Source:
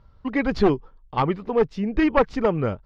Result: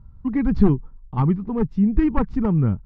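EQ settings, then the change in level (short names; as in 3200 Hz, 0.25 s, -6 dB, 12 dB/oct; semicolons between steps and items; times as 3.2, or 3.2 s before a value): dynamic EQ 640 Hz, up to -4 dB, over -35 dBFS, Q 2; EQ curve 200 Hz 0 dB, 550 Hz -19 dB, 870 Hz -12 dB, 3300 Hz -24 dB; +9.0 dB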